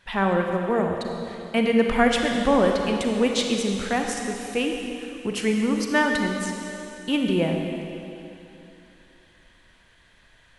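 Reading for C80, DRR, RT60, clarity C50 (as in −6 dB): 3.5 dB, 2.0 dB, 2.9 s, 2.5 dB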